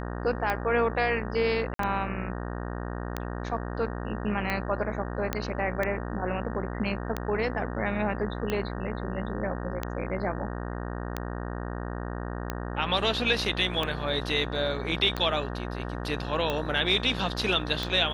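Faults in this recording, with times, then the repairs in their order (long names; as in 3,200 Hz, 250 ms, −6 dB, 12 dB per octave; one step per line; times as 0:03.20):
mains buzz 60 Hz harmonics 31 −34 dBFS
scratch tick 45 rpm −15 dBFS
0:01.74–0:01.79: drop-out 53 ms
0:05.33: click −12 dBFS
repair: click removal
hum removal 60 Hz, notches 31
repair the gap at 0:01.74, 53 ms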